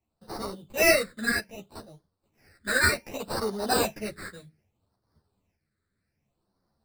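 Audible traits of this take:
aliases and images of a low sample rate 3,300 Hz, jitter 0%
phaser sweep stages 8, 0.64 Hz, lowest notch 800–2,500 Hz
tremolo saw up 0.72 Hz, depth 50%
a shimmering, thickened sound

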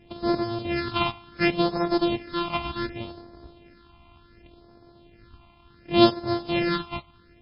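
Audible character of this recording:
a buzz of ramps at a fixed pitch in blocks of 128 samples
phaser sweep stages 6, 0.68 Hz, lowest notch 440–2,800 Hz
MP3

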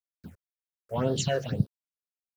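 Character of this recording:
a quantiser's noise floor 10 bits, dither none
phaser sweep stages 6, 2 Hz, lowest notch 210–2,200 Hz

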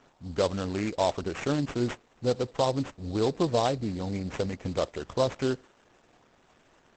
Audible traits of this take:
aliases and images of a low sample rate 4,500 Hz, jitter 20%
Opus

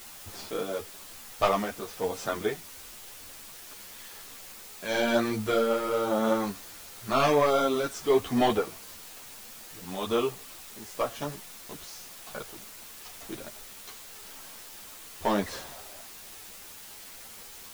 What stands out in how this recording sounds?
tremolo triangle 0.99 Hz, depth 55%
a quantiser's noise floor 8 bits, dither triangular
a shimmering, thickened sound

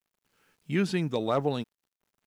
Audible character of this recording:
a quantiser's noise floor 12 bits, dither none

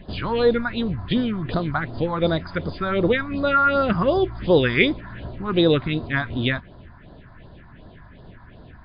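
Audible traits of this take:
phaser sweep stages 4, 2.7 Hz, lowest notch 450–2,400 Hz
MP3

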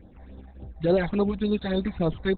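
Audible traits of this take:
phaser sweep stages 8, 3.5 Hz, lowest notch 350–2,400 Hz
Opus

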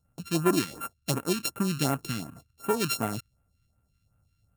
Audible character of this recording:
a buzz of ramps at a fixed pitch in blocks of 32 samples
phaser sweep stages 2, 2.7 Hz, lowest notch 620–4,500 Hz

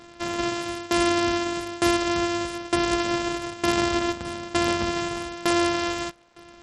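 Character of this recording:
a buzz of ramps at a fixed pitch in blocks of 128 samples
tremolo saw down 1.1 Hz, depth 90%
a quantiser's noise floor 10 bits, dither none
SBC

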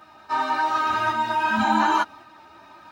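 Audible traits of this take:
a quantiser's noise floor 12 bits, dither none
tremolo saw up 0.9 Hz, depth 35%
a shimmering, thickened sound

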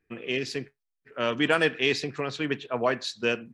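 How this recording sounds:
background noise floor −83 dBFS
spectral slope −2.5 dB per octave

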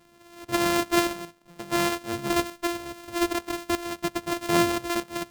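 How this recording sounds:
a buzz of ramps at a fixed pitch in blocks of 128 samples
tremolo saw up 0.8 Hz, depth 65%

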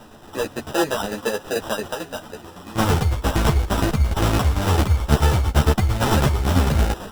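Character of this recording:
aliases and images of a low sample rate 2,200 Hz, jitter 0%
tremolo saw down 9 Hz, depth 60%
a shimmering, thickened sound

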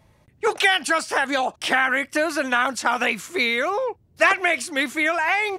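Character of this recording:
background noise floor −58 dBFS
spectral slope −1.0 dB per octave

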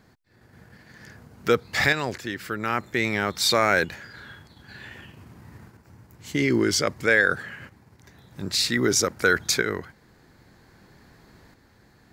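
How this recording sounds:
tremolo saw up 0.52 Hz, depth 50%

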